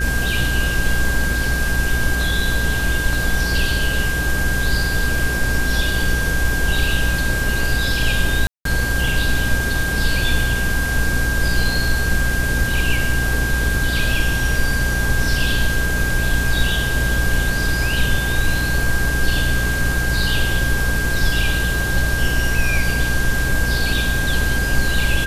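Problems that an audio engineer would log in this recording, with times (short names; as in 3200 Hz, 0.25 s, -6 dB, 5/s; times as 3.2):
buzz 60 Hz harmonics 10 -23 dBFS
tone 1600 Hz -22 dBFS
8.47–8.65 gap 0.183 s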